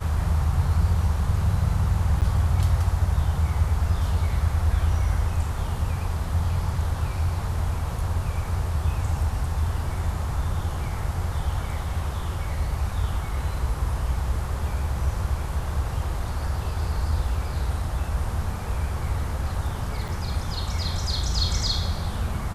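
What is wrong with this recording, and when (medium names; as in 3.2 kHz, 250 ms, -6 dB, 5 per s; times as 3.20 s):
2.21–2.22 s: dropout 8.6 ms
20.08–20.09 s: dropout 5.8 ms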